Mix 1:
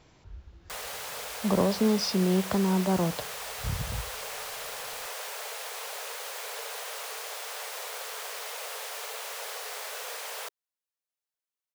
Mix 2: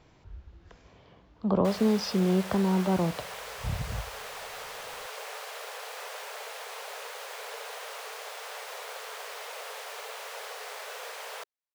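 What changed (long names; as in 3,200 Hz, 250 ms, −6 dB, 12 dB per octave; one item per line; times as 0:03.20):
background: entry +0.95 s
master: add high-shelf EQ 4,800 Hz −9 dB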